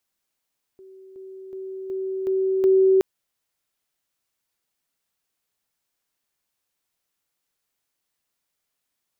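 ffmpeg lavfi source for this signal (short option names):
-f lavfi -i "aevalsrc='pow(10,(-43+6*floor(t/0.37))/20)*sin(2*PI*381*t)':d=2.22:s=44100"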